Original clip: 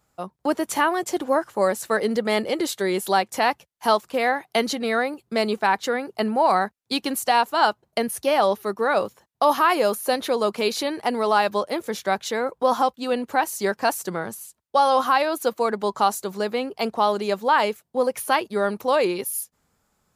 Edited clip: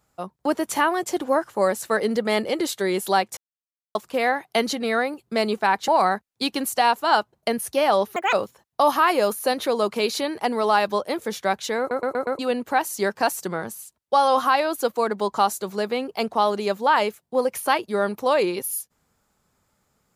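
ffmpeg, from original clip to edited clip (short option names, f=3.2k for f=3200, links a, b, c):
-filter_complex "[0:a]asplit=11[a][b][c][d][e][f][g][h][i][j][k];[a]atrim=end=3.37,asetpts=PTS-STARTPTS,afade=t=out:st=3.366:d=0.004:c=hsin[l];[b]atrim=start=3.37:end=3.95,asetpts=PTS-STARTPTS,volume=0[m];[c]atrim=start=3.95:end=5.882,asetpts=PTS-STARTPTS,afade=t=in:d=0.004:c=hsin[n];[d]atrim=start=6.378:end=8.664[o];[e]atrim=start=8.66:end=8.95,asetpts=PTS-STARTPTS,asetrate=75411,aresample=44100[p];[f]atrim=start=8.946:end=12.532[q];[g]atrim=start=12.408:end=12.532[r];[h]atrim=start=12.408:end=12.532[s];[i]atrim=start=12.408:end=12.532[t];[j]atrim=start=12.408:end=12.532[u];[k]atrim=start=13.008[v];[l][m][n]concat=n=3:v=0:a=1[w];[w][o]acrossfade=d=0.004:c1=hsin:c2=hsin[x];[x][p]acrossfade=d=0.004:c1=hsin:c2=hsin[y];[y][q]acrossfade=d=0.004:c1=hsin:c2=hsin[z];[z][r]acrossfade=d=0.004:c1=hsin:c2=hsin[aa];[aa][s]acrossfade=d=0.004:c1=hsin:c2=hsin[ab];[ab][t]acrossfade=d=0.004:c1=hsin:c2=hsin[ac];[ac][u]acrossfade=d=0.004:c1=hsin:c2=hsin[ad];[ad][v]acrossfade=d=0.004:c1=hsin:c2=hsin"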